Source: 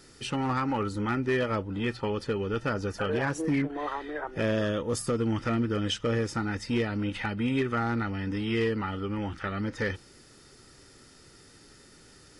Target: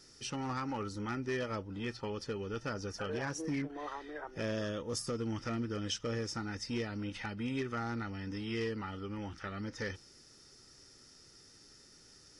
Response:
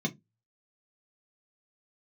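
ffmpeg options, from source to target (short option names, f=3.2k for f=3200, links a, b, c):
-af "equalizer=f=5.6k:w=2.6:g=12.5,volume=-9dB"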